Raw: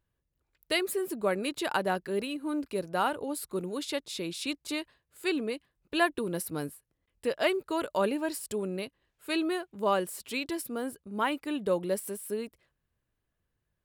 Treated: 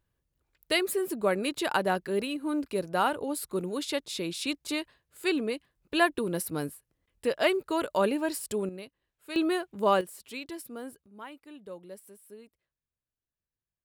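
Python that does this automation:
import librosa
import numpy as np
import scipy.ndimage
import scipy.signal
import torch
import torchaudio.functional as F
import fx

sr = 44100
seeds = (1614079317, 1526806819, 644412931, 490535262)

y = fx.gain(x, sr, db=fx.steps((0.0, 2.0), (8.69, -7.0), (9.36, 3.0), (10.01, -6.0), (11.06, -15.0)))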